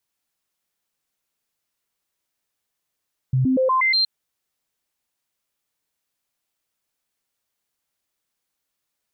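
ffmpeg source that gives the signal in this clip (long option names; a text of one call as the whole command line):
ffmpeg -f lavfi -i "aevalsrc='0.168*clip(min(mod(t,0.12),0.12-mod(t,0.12))/0.005,0,1)*sin(2*PI*130*pow(2,floor(t/0.12)/1)*mod(t,0.12))':duration=0.72:sample_rate=44100" out.wav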